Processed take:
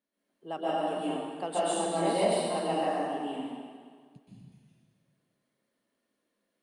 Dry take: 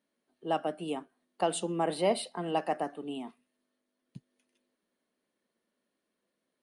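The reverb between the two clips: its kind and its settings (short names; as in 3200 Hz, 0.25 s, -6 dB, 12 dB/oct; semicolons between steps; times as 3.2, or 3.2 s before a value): plate-style reverb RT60 1.8 s, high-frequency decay 0.9×, pre-delay 0.115 s, DRR -9.5 dB; gain -7.5 dB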